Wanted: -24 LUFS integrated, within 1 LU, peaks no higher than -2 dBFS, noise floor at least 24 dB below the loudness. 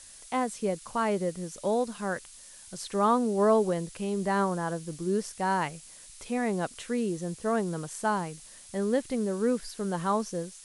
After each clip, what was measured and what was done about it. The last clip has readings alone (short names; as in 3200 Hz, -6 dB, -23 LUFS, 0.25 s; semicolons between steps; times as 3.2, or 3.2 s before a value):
noise floor -50 dBFS; noise floor target -54 dBFS; loudness -29.5 LUFS; peak -13.0 dBFS; loudness target -24.0 LUFS
-> noise print and reduce 6 dB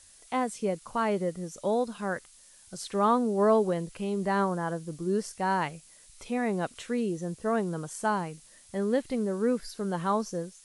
noise floor -56 dBFS; loudness -29.5 LUFS; peak -13.0 dBFS; loudness target -24.0 LUFS
-> gain +5.5 dB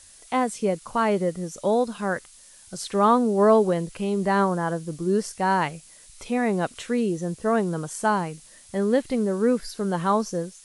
loudness -24.0 LUFS; peak -7.5 dBFS; noise floor -50 dBFS